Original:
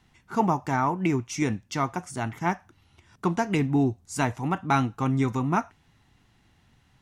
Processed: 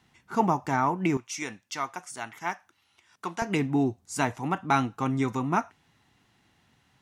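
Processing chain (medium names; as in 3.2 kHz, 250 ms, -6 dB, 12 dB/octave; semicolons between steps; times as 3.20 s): high-pass 140 Hz 6 dB/octave, from 1.17 s 1.2 kHz, from 3.42 s 200 Hz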